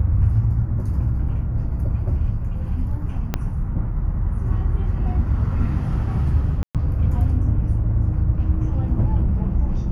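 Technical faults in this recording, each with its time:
3.34 s: pop -8 dBFS
6.63–6.75 s: dropout 117 ms

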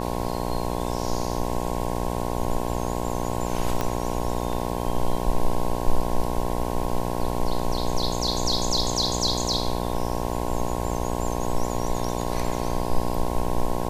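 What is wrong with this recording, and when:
buzz 60 Hz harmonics 18 -28 dBFS
3.81 s: pop -11 dBFS

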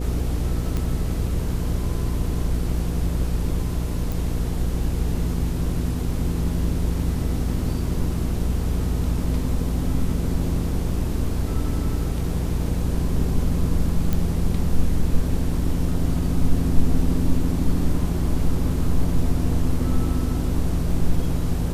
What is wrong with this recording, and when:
hum 60 Hz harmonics 8 -26 dBFS
0.77 s: pop -14 dBFS
4.12 s: pop
14.13 s: pop -10 dBFS

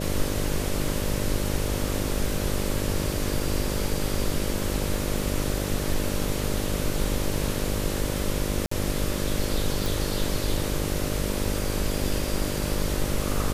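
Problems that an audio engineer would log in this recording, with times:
buzz 50 Hz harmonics 12 -30 dBFS
8.66–8.71 s: dropout 54 ms
9.86 s: pop

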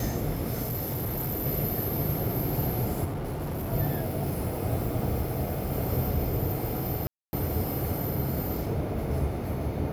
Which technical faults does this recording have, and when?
0.62–1.47 s: clipped -27.5 dBFS
3.04–3.73 s: clipped -29.5 dBFS
7.07–7.33 s: dropout 260 ms

